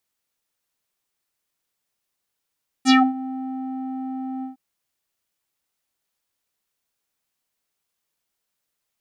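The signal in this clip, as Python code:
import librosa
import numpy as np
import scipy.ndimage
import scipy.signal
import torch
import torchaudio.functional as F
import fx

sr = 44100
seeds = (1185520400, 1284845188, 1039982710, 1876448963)

y = fx.sub_voice(sr, note=60, wave='square', cutoff_hz=610.0, q=3.9, env_oct=4.0, env_s=0.19, attack_ms=49.0, decay_s=0.23, sustain_db=-18, release_s=0.13, note_s=1.58, slope=12)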